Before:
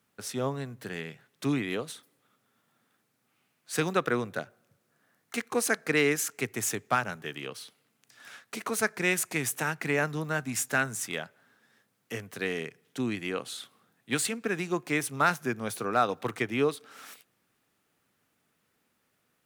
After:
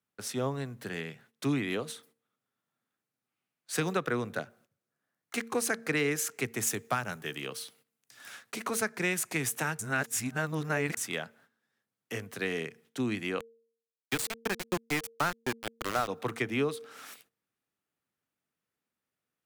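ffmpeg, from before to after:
-filter_complex "[0:a]asettb=1/sr,asplit=3[a][b][c];[a]atrim=end=6.674[d];[b]atrim=start=6.67:end=8.43,asetpts=PTS-STARTPTS,afade=t=in:d=0.004:c=qsin,afade=t=out:st=1.756:d=0.004:c=qsin,highshelf=f=7.2k:g=8[e];[c]atrim=start=8.426[f];[d][e]acrossfade=d=0.004:c1=hsin:c2=qsin[g];[g][f]acrossfade=d=0.004:c1=qsin:c2=hsin,asettb=1/sr,asplit=3[h][i][j];[h]atrim=end=13.404[k];[i]atrim=start=13.4:end=16.08,asetpts=PTS-STARTPTS,afade=t=in:d=0.004:c=qsin,afade=t=out:st=2.676:d=0.004:c=qsin,aeval=exprs='val(0)*gte(abs(val(0)),0.0501)':c=same[l];[j]atrim=start=16.076[m];[k][l]acrossfade=d=0.004:c1=hsin:c2=qsin[n];[n][m]acrossfade=d=0.004:c1=qsin:c2=hsin,asplit=3[o][p][q];[o]atrim=end=9.792[r];[p]atrim=start=9.788:end=10.972,asetpts=PTS-STARTPTS,areverse[s];[q]atrim=start=10.968[t];[r][s]acrossfade=d=0.004:c1=hsin:c2=hsin[u];[u][t]acrossfade=d=0.004:c1=hsin:c2=hsin,agate=range=-15dB:threshold=-60dB:ratio=16:detection=peak,bandreject=f=229.3:t=h:w=4,bandreject=f=458.6:t=h:w=4,acrossover=split=190[v][w];[w]acompressor=threshold=-27dB:ratio=3[x];[v][x]amix=inputs=2:normalize=0"

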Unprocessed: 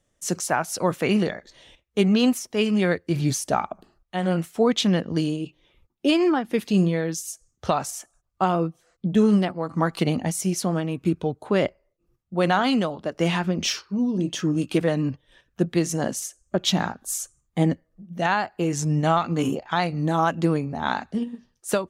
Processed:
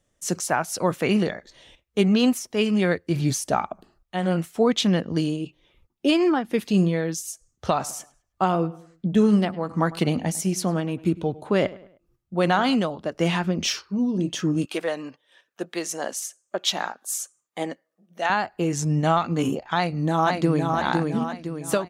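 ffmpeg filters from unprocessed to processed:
-filter_complex "[0:a]asplit=3[a][b][c];[a]afade=t=out:st=7.72:d=0.02[d];[b]asplit=2[e][f];[f]adelay=103,lowpass=f=3.6k:p=1,volume=-19dB,asplit=2[g][h];[h]adelay=103,lowpass=f=3.6k:p=1,volume=0.4,asplit=2[i][j];[j]adelay=103,lowpass=f=3.6k:p=1,volume=0.4[k];[e][g][i][k]amix=inputs=4:normalize=0,afade=t=in:st=7.72:d=0.02,afade=t=out:st=12.74:d=0.02[l];[c]afade=t=in:st=12.74:d=0.02[m];[d][l][m]amix=inputs=3:normalize=0,asettb=1/sr,asplit=3[n][o][p];[n]atrim=end=14.654[q];[o]atrim=start=14.65:end=18.3,asetpts=PTS-STARTPTS,afade=t=in:d=0.004:c=qsin,afade=t=out:st=3.646:d=0.004:c=qsin,highpass=510[r];[p]atrim=start=18.296[s];[q][r]acrossfade=d=0.004:c1=hsin:c2=qsin[t];[t][s]acrossfade=d=0.004:c1=qsin:c2=hsin,asplit=2[u][v];[v]afade=t=in:st=19.75:d=0.01,afade=t=out:st=20.73:d=0.01,aecho=0:1:510|1020|1530|2040|2550|3060:0.668344|0.300755|0.13534|0.0609028|0.0274063|0.0123328[w];[u][w]amix=inputs=2:normalize=0"

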